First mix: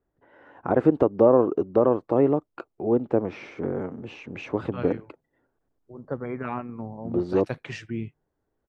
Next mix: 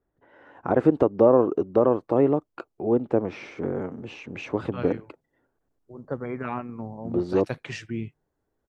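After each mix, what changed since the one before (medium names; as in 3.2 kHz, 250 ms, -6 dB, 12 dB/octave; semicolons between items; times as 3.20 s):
master: add treble shelf 4.6 kHz +6 dB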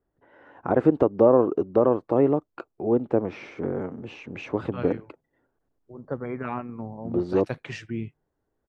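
master: add treble shelf 4.6 kHz -6 dB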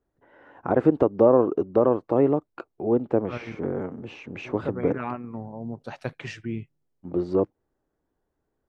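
second voice: entry -1.45 s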